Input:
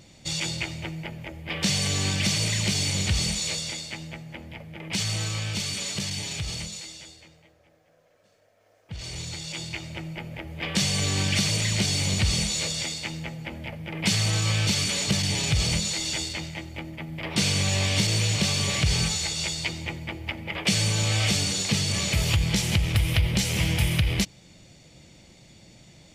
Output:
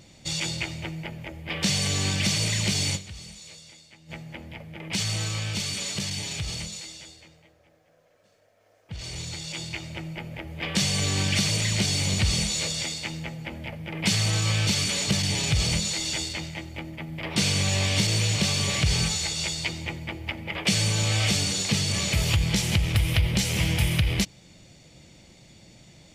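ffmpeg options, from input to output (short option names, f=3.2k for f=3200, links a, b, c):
-filter_complex "[0:a]asplit=3[a][b][c];[a]atrim=end=3.15,asetpts=PTS-STARTPTS,afade=t=out:st=2.95:d=0.2:c=exp:silence=0.149624[d];[b]atrim=start=3.15:end=3.91,asetpts=PTS-STARTPTS,volume=-16.5dB[e];[c]atrim=start=3.91,asetpts=PTS-STARTPTS,afade=t=in:d=0.2:c=exp:silence=0.149624[f];[d][e][f]concat=n=3:v=0:a=1"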